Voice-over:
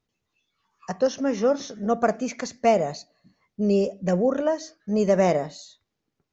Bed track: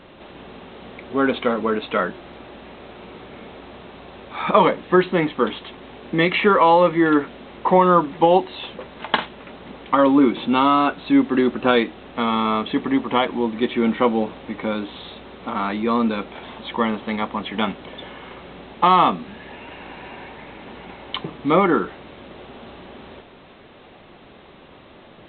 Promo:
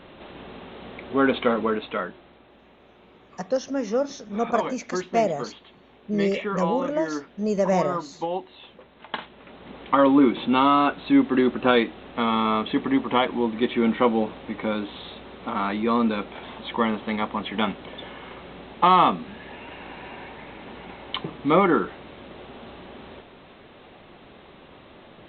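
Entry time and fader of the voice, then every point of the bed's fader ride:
2.50 s, -2.5 dB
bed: 1.58 s -1 dB
2.4 s -13.5 dB
9 s -13.5 dB
9.83 s -2 dB

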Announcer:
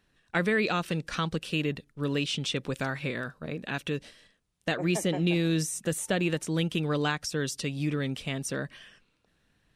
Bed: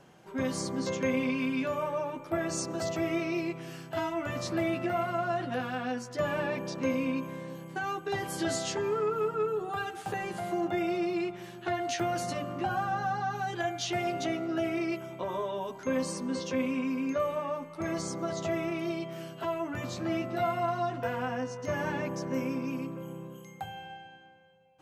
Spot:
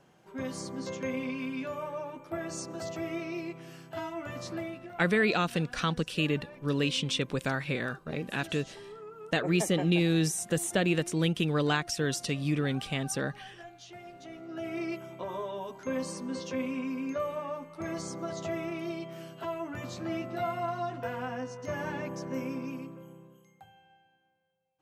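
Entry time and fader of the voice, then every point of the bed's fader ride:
4.65 s, +0.5 dB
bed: 4.53 s -5 dB
4.96 s -16.5 dB
14.2 s -16.5 dB
14.8 s -3 dB
22.64 s -3 dB
23.81 s -17.5 dB

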